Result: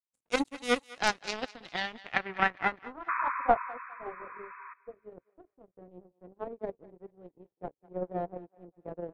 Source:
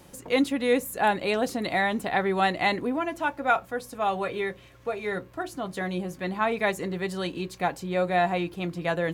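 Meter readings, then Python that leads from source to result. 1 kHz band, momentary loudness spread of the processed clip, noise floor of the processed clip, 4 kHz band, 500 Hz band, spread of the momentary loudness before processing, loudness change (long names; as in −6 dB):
−6.0 dB, 21 LU, below −85 dBFS, −4.5 dB, −9.5 dB, 9 LU, −5.5 dB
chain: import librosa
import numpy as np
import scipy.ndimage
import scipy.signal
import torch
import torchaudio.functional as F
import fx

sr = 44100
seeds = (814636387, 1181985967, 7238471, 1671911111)

y = fx.power_curve(x, sr, exponent=3.0)
y = fx.spec_paint(y, sr, seeds[0], shape='noise', start_s=3.08, length_s=1.66, low_hz=950.0, high_hz=2600.0, level_db=-34.0)
y = fx.filter_sweep_lowpass(y, sr, from_hz=8700.0, to_hz=480.0, start_s=0.78, end_s=3.98, q=2.0)
y = fx.echo_thinned(y, sr, ms=203, feedback_pct=39, hz=810.0, wet_db=-18)
y = y * 10.0 ** (5.5 / 20.0)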